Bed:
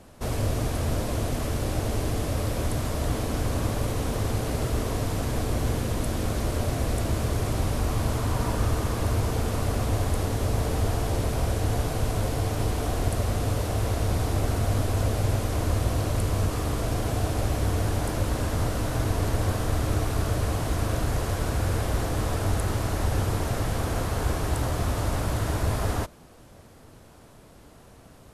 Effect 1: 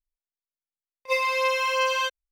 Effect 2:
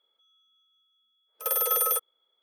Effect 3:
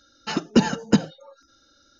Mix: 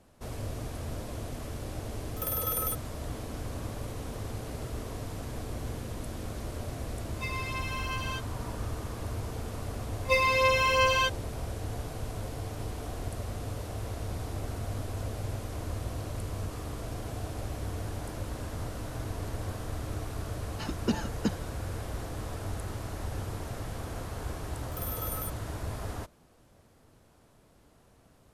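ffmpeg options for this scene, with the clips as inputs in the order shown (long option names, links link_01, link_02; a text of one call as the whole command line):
ffmpeg -i bed.wav -i cue0.wav -i cue1.wav -i cue2.wav -filter_complex "[2:a]asplit=2[link_01][link_02];[1:a]asplit=2[link_03][link_04];[0:a]volume=-10.5dB[link_05];[link_03]highpass=frequency=930:width=0.5412,highpass=frequency=930:width=1.3066[link_06];[link_01]atrim=end=2.42,asetpts=PTS-STARTPTS,volume=-7dB,afade=type=in:duration=0.004:curve=hsin,afade=type=out:start_time=2.416:duration=0.004:curve=hsin,adelay=760[link_07];[link_06]atrim=end=2.31,asetpts=PTS-STARTPTS,volume=-11dB,afade=type=in:duration=0.004:curve=hsin,afade=type=out:start_time=2.306:duration=0.004:curve=hsin,adelay=6110[link_08];[link_04]atrim=end=2.31,asetpts=PTS-STARTPTS,volume=-0.5dB,afade=type=in:duration=0.004:curve=hsin,afade=type=out:start_time=2.306:duration=0.004:curve=hsin,adelay=9000[link_09];[3:a]atrim=end=1.99,asetpts=PTS-STARTPTS,volume=-12dB,afade=type=in:duration=0.004:curve=hsin,afade=type=out:start_time=1.986:duration=0.004:curve=hsin,adelay=20320[link_10];[link_02]atrim=end=2.42,asetpts=PTS-STARTPTS,volume=-13dB,afade=type=in:duration=0.004:curve=hsin,afade=type=out:start_time=2.416:duration=0.004:curve=hsin,adelay=23310[link_11];[link_05][link_07][link_08][link_09][link_10][link_11]amix=inputs=6:normalize=0" out.wav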